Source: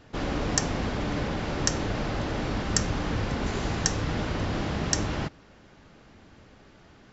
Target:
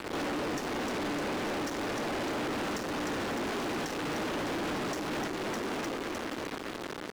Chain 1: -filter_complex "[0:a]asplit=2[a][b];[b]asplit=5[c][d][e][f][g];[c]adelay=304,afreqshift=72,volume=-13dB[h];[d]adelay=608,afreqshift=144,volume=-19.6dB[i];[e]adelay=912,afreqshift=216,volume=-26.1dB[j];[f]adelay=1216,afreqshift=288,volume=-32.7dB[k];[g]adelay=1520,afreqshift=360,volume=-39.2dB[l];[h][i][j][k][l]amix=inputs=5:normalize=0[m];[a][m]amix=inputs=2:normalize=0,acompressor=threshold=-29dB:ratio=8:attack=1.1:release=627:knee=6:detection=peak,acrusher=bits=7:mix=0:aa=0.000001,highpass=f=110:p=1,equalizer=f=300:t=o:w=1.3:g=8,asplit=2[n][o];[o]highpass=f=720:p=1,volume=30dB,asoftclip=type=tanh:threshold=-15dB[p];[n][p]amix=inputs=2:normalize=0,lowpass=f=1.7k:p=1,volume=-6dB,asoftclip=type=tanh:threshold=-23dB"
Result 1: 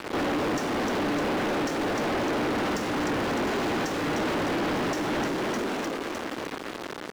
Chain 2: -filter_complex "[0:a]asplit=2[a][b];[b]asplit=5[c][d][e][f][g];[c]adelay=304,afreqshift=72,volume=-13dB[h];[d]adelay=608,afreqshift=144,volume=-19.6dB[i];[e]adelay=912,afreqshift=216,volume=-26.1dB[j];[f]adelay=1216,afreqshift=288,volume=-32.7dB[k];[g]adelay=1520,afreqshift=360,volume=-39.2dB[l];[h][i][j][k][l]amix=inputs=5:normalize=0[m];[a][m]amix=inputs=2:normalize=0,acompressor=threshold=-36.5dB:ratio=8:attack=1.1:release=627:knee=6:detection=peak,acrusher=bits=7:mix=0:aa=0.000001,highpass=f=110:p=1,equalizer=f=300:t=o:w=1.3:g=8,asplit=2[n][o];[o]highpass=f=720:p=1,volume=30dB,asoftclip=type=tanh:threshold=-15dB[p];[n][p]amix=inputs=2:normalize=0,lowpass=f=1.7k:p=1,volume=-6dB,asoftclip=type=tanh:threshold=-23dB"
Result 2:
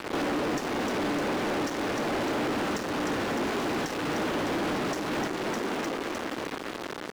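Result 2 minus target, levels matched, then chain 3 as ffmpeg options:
soft clip: distortion -9 dB
-filter_complex "[0:a]asplit=2[a][b];[b]asplit=5[c][d][e][f][g];[c]adelay=304,afreqshift=72,volume=-13dB[h];[d]adelay=608,afreqshift=144,volume=-19.6dB[i];[e]adelay=912,afreqshift=216,volume=-26.1dB[j];[f]adelay=1216,afreqshift=288,volume=-32.7dB[k];[g]adelay=1520,afreqshift=360,volume=-39.2dB[l];[h][i][j][k][l]amix=inputs=5:normalize=0[m];[a][m]amix=inputs=2:normalize=0,acompressor=threshold=-36.5dB:ratio=8:attack=1.1:release=627:knee=6:detection=peak,acrusher=bits=7:mix=0:aa=0.000001,highpass=f=110:p=1,equalizer=f=300:t=o:w=1.3:g=8,asplit=2[n][o];[o]highpass=f=720:p=1,volume=30dB,asoftclip=type=tanh:threshold=-15dB[p];[n][p]amix=inputs=2:normalize=0,lowpass=f=1.7k:p=1,volume=-6dB,asoftclip=type=tanh:threshold=-31dB"

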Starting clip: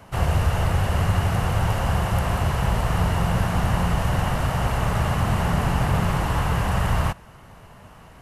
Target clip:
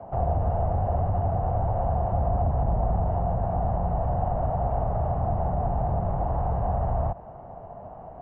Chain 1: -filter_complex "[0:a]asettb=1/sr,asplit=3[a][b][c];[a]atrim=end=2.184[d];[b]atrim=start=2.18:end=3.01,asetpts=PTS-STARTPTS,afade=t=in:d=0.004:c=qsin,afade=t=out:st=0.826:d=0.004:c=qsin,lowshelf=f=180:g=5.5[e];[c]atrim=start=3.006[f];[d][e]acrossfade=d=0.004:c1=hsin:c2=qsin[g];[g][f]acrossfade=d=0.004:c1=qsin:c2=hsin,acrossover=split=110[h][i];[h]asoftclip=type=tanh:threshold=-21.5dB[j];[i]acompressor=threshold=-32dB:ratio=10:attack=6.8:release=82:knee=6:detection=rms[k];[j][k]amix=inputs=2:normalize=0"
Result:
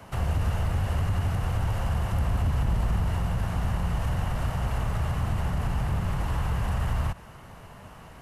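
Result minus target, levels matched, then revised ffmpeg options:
1000 Hz band -6.5 dB
-filter_complex "[0:a]asettb=1/sr,asplit=3[a][b][c];[a]atrim=end=2.184[d];[b]atrim=start=2.18:end=3.01,asetpts=PTS-STARTPTS,afade=t=in:d=0.004:c=qsin,afade=t=out:st=0.826:d=0.004:c=qsin,lowshelf=f=180:g=5.5[e];[c]atrim=start=3.006[f];[d][e]acrossfade=d=0.004:c1=hsin:c2=qsin[g];[g][f]acrossfade=d=0.004:c1=qsin:c2=hsin,acrossover=split=110[h][i];[h]asoftclip=type=tanh:threshold=-21.5dB[j];[i]acompressor=threshold=-32dB:ratio=10:attack=6.8:release=82:knee=6:detection=rms,lowpass=f=710:t=q:w=5.5[k];[j][k]amix=inputs=2:normalize=0"

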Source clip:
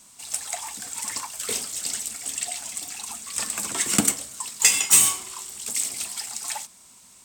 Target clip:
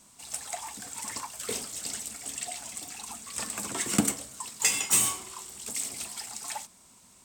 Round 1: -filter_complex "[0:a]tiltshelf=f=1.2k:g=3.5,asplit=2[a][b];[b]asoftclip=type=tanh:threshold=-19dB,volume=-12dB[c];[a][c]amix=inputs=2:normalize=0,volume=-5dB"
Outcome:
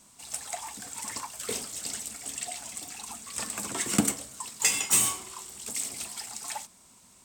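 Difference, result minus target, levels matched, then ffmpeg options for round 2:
soft clip: distortion -4 dB
-filter_complex "[0:a]tiltshelf=f=1.2k:g=3.5,asplit=2[a][b];[b]asoftclip=type=tanh:threshold=-25dB,volume=-12dB[c];[a][c]amix=inputs=2:normalize=0,volume=-5dB"

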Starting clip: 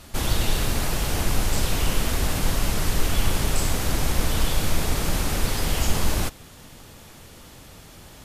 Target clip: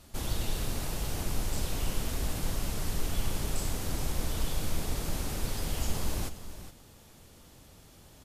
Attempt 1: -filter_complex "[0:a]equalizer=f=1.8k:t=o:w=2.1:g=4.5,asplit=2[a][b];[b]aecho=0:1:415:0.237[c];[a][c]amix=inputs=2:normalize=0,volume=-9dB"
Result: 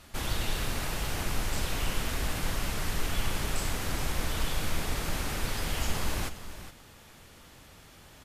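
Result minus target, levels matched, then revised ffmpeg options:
2000 Hz band +6.0 dB
-filter_complex "[0:a]equalizer=f=1.8k:t=o:w=2.1:g=-4,asplit=2[a][b];[b]aecho=0:1:415:0.237[c];[a][c]amix=inputs=2:normalize=0,volume=-9dB"

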